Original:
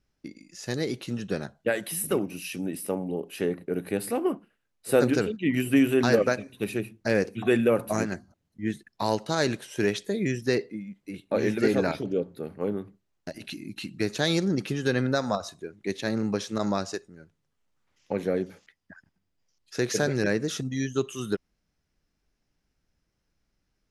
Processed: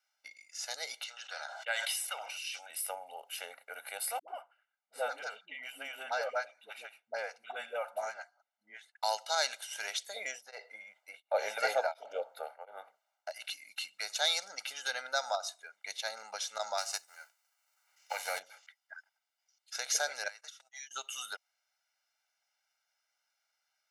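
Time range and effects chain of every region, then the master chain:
1.04–2.7 BPF 760–5700 Hz + sustainer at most 40 dB/s
4.19–9.03 LPF 1300 Hz 6 dB/oct + dispersion highs, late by 89 ms, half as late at 360 Hz
10.16–13.31 bell 620 Hz +13.5 dB 2.2 oct + beating tremolo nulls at 1.4 Hz
16.77–18.38 spectral whitening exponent 0.6 + bell 3400 Hz -7.5 dB 0.29 oct + notches 50/100/150/200/250/300/350 Hz
20.28–20.91 gate -30 dBFS, range -23 dB + HPF 1000 Hz + compressor 5:1, threshold -42 dBFS
whole clip: HPF 800 Hz 24 dB/oct; dynamic EQ 1600 Hz, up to -6 dB, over -46 dBFS, Q 0.83; comb 1.4 ms, depth 92%; gain -1 dB

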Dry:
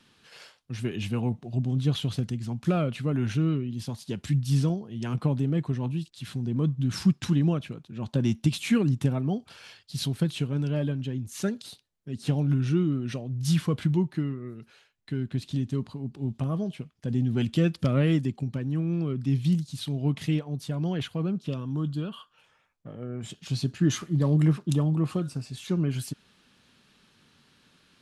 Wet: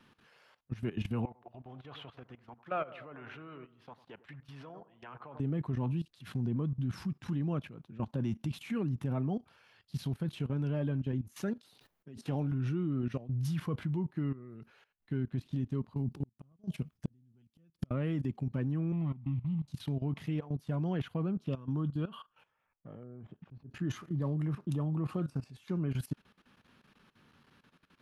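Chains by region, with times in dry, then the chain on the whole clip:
1.25–5.4 three-band isolator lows -22 dB, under 530 Hz, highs -20 dB, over 3400 Hz + analogue delay 98 ms, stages 1024, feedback 50%, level -12 dB
11.6–12.52 low shelf 150 Hz -10 dB + sustainer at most 110 dB/s
15.96–17.91 tone controls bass +7 dB, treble +12 dB + flipped gate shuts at -17 dBFS, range -41 dB
18.92–19.68 median filter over 41 samples + air absorption 86 m + fixed phaser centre 1600 Hz, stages 6
23.03–23.71 LPF 1100 Hz + auto swell 0.229 s
whole clip: graphic EQ 1000/4000/8000 Hz +3/-6/-11 dB; level quantiser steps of 16 dB

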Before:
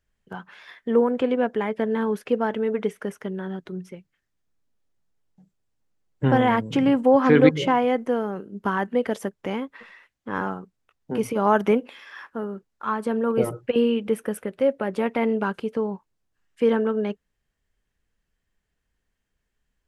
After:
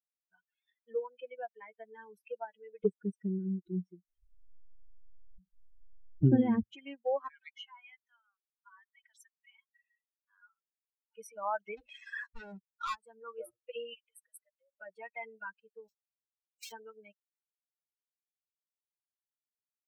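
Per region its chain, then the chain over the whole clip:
2.85–6.63 resonant low shelf 520 Hz +13.5 dB, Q 1.5 + upward compressor, threshold -23 dBFS
7.28–11.18 inverse Chebyshev high-pass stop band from 210 Hz, stop band 70 dB + compressor 2.5:1, threshold -34 dBFS
11.77–12.95 tape spacing loss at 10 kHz 28 dB + sample leveller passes 5
13.94–14.72 brick-wall FIR high-pass 470 Hz + compressor 8:1, threshold -34 dBFS
15.88–16.72 switching dead time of 0.12 ms + HPF 1300 Hz 24 dB/oct + high shelf 3500 Hz +7.5 dB
whole clip: per-bin expansion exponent 3; high shelf 7700 Hz -10 dB; compressor 1.5:1, threshold -48 dBFS

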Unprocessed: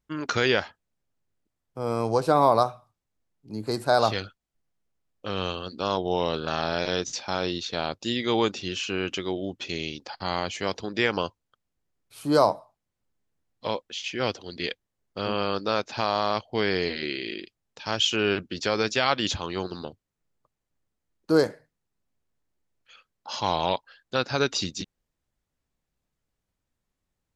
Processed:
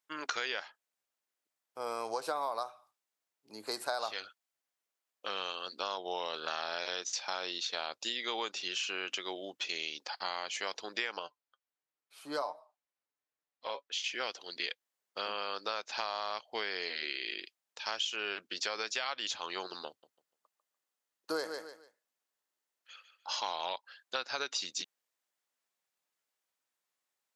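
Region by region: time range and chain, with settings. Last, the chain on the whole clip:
11.19–13.92 LPF 3200 Hz 6 dB/oct + flange 1.4 Hz, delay 6.3 ms, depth 1.2 ms, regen +43%
19.88–23.29 notch 2300 Hz, Q 17 + feedback echo 0.147 s, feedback 27%, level -10.5 dB
whole clip: Bessel high-pass 860 Hz, order 2; high shelf 9600 Hz +3.5 dB; compressor 6:1, threshold -32 dBFS

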